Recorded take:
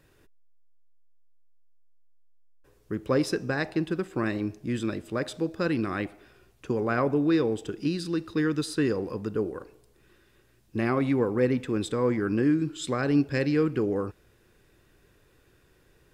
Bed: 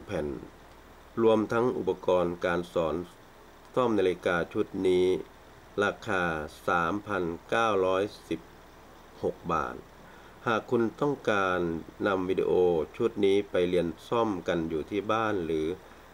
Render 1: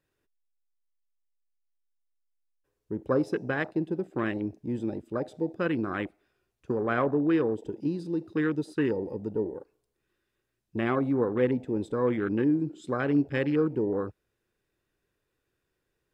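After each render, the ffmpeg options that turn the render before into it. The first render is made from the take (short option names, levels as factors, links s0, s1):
-af "afwtdn=0.0178,lowshelf=f=180:g=-5"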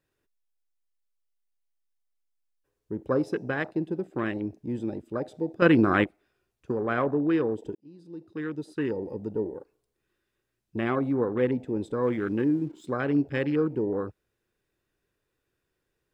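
-filter_complex "[0:a]asettb=1/sr,asplit=3[s0][s1][s2];[s0]atrim=end=12.034[s3];[s1]atrim=start=12.03:end=12.86,asetpts=PTS-STARTPTS,afade=t=in:d=0.004:c=qsin,afade=t=out:st=0.826:d=0.004:c=qsin,aeval=exprs='sgn(val(0))*max(abs(val(0))-0.001,0)':c=same[s4];[s2]atrim=start=12.856[s5];[s3][s4]acrossfade=d=0.004:c1=hsin:c2=qsin[s6];[s6][s5]acrossfade=d=0.004:c1=qsin:c2=hsin,asplit=4[s7][s8][s9][s10];[s7]atrim=end=5.622[s11];[s8]atrim=start=5.618:end=6.042,asetpts=PTS-STARTPTS,volume=2.99[s12];[s9]atrim=start=6.038:end=7.75,asetpts=PTS-STARTPTS,afade=t=out:st=1.708:d=0.004:c=hsin[s13];[s10]atrim=start=7.75,asetpts=PTS-STARTPTS,afade=t=in:d=1.42[s14];[s11][s12]acrossfade=d=0.004:c1=hsin:c2=hsin[s15];[s13][s14]concat=n=2:v=0:a=1[s16];[s15][s16]acrossfade=d=0.004:c1=hsin:c2=hsin"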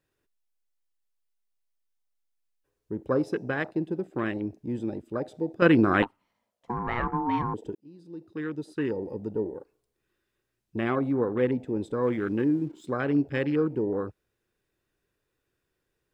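-filter_complex "[0:a]asettb=1/sr,asplit=3[s0][s1][s2];[s0]atrim=end=6.024[s3];[s1]atrim=start=6.02:end=7.54,asetpts=PTS-STARTPTS,afade=t=in:d=0.004:c=qsin,afade=t=out:st=1.516:d=0.004:c=qsin,aeval=exprs='val(0)*sin(2*PI*600*n/s)':c=same[s4];[s2]atrim=start=7.536[s5];[s3][s4]acrossfade=d=0.004:c1=hsin:c2=qsin[s6];[s6][s5]acrossfade=d=0.004:c1=qsin:c2=hsin"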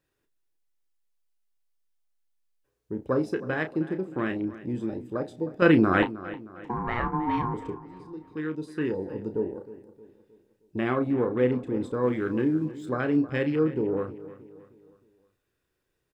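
-filter_complex "[0:a]asplit=2[s0][s1];[s1]adelay=32,volume=0.355[s2];[s0][s2]amix=inputs=2:normalize=0,asplit=2[s3][s4];[s4]adelay=312,lowpass=f=4300:p=1,volume=0.158,asplit=2[s5][s6];[s6]adelay=312,lowpass=f=4300:p=1,volume=0.44,asplit=2[s7][s8];[s8]adelay=312,lowpass=f=4300:p=1,volume=0.44,asplit=2[s9][s10];[s10]adelay=312,lowpass=f=4300:p=1,volume=0.44[s11];[s3][s5][s7][s9][s11]amix=inputs=5:normalize=0"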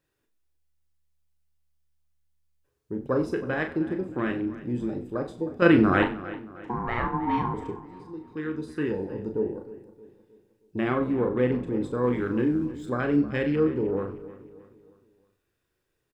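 -filter_complex "[0:a]asplit=2[s0][s1];[s1]adelay=41,volume=0.355[s2];[s0][s2]amix=inputs=2:normalize=0,asplit=4[s3][s4][s5][s6];[s4]adelay=94,afreqshift=-74,volume=0.158[s7];[s5]adelay=188,afreqshift=-148,volume=0.0473[s8];[s6]adelay=282,afreqshift=-222,volume=0.0143[s9];[s3][s7][s8][s9]amix=inputs=4:normalize=0"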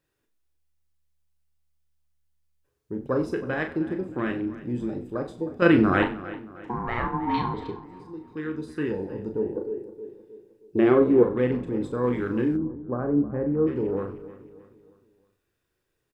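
-filter_complex "[0:a]asettb=1/sr,asplit=3[s0][s1][s2];[s0]atrim=end=7.344[s3];[s1]atrim=start=7.34:end=7.84,asetpts=PTS-STARTPTS,afade=t=in:d=0.004:c=qsin,afade=t=out:st=0.496:d=0.004:c=qsin,lowpass=f=4100:t=q:w=9.3[s4];[s2]atrim=start=7.836[s5];[s3][s4]acrossfade=d=0.004:c1=hsin:c2=qsin[s6];[s6][s5]acrossfade=d=0.004:c1=qsin:c2=hsin,asettb=1/sr,asplit=3[s7][s8][s9];[s7]atrim=end=9.564[s10];[s8]atrim=start=9.56:end=11.23,asetpts=PTS-STARTPTS,afade=t=in:d=0.004:c=qsin,afade=t=out:st=1.666:d=0.004:c=qsin,equalizer=f=400:w=1.5:g=12.5[s11];[s9]atrim=start=11.226[s12];[s10][s11]acrossfade=d=0.004:c1=hsin:c2=qsin[s13];[s13][s12]acrossfade=d=0.004:c1=qsin:c2=hsin,asplit=3[s14][s15][s16];[s14]afade=t=out:st=12.56:d=0.02[s17];[s15]lowpass=f=1100:w=0.5412,lowpass=f=1100:w=1.3066,afade=t=in:st=12.56:d=0.02,afade=t=out:st=13.66:d=0.02[s18];[s16]afade=t=in:st=13.66:d=0.02[s19];[s17][s18][s19]amix=inputs=3:normalize=0"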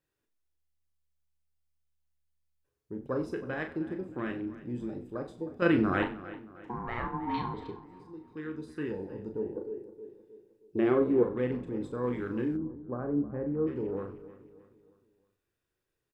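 -af "volume=0.447"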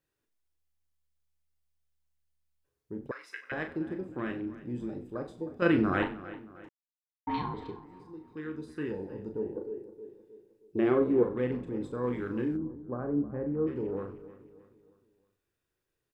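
-filter_complex "[0:a]asettb=1/sr,asplit=3[s0][s1][s2];[s0]atrim=end=3.114[s3];[s1]atrim=start=3.11:end=3.52,asetpts=PTS-STARTPTS,afade=t=in:d=0.004:c=qsin,afade=t=out:st=0.406:d=0.004:c=qsin,highpass=f=2000:t=q:w=6.3[s4];[s2]atrim=start=3.516[s5];[s3][s4]acrossfade=d=0.004:c1=hsin:c2=qsin[s6];[s6][s5]acrossfade=d=0.004:c1=qsin:c2=hsin,asplit=3[s7][s8][s9];[s7]atrim=end=6.69,asetpts=PTS-STARTPTS,afade=t=out:st=6.686:d=0.004:c=hsin[s10];[s8]atrim=start=6.69:end=7.27,asetpts=PTS-STARTPTS,volume=0[s11];[s9]atrim=start=7.27,asetpts=PTS-STARTPTS,afade=t=in:d=0.004:c=hsin[s12];[s10][s11][s12]concat=n=3:v=0:a=1"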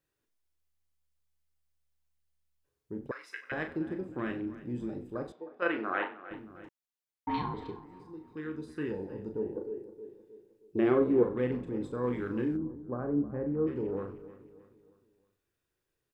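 -filter_complex "[0:a]asettb=1/sr,asplit=3[s0][s1][s2];[s0]atrim=end=5.324[s3];[s1]atrim=start=5.32:end=6.31,asetpts=PTS-STARTPTS,afade=t=in:d=0.004:c=qsin,afade=t=out:st=0.986:d=0.004:c=qsin,highpass=550,lowpass=2700[s4];[s2]atrim=start=6.306[s5];[s3][s4]acrossfade=d=0.004:c1=hsin:c2=qsin[s6];[s6][s5]acrossfade=d=0.004:c1=qsin:c2=hsin"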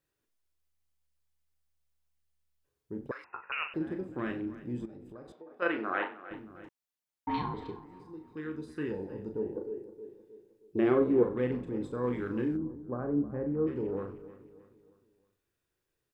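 -filter_complex "[0:a]asettb=1/sr,asplit=3[s0][s1][s2];[s0]atrim=end=3.244[s3];[s1]atrim=start=3.24:end=3.74,asetpts=PTS-STARTPTS,afade=t=in:d=0.004:c=qsin,afade=t=out:st=0.496:d=0.004:c=qsin,lowpass=f=2600:t=q:w=0.5098,lowpass=f=2600:t=q:w=0.6013,lowpass=f=2600:t=q:w=0.9,lowpass=f=2600:t=q:w=2.563,afreqshift=-3000[s4];[s2]atrim=start=3.736[s5];[s3][s4]acrossfade=d=0.004:c1=hsin:c2=qsin[s6];[s6][s5]acrossfade=d=0.004:c1=qsin:c2=hsin,asettb=1/sr,asplit=3[s7][s8][s9];[s7]atrim=end=4.854[s10];[s8]atrim=start=4.85:end=5.56,asetpts=PTS-STARTPTS,afade=t=in:d=0.004:c=qsin,afade=t=out:st=0.706:d=0.004:c=qsin,acompressor=threshold=0.00562:ratio=5:attack=3.2:release=140:knee=1:detection=peak[s11];[s9]atrim=start=5.556[s12];[s10][s11]acrossfade=d=0.004:c1=hsin:c2=qsin[s13];[s13][s12]acrossfade=d=0.004:c1=qsin:c2=hsin"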